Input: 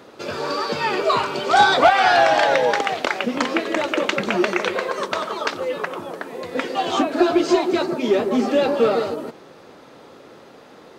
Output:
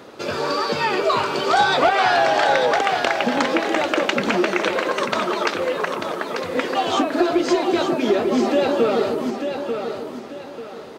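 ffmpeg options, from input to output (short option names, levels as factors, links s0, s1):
-af "acompressor=threshold=0.0891:ratio=2,aecho=1:1:891|1782|2673|3564:0.447|0.143|0.0457|0.0146,volume=1.41"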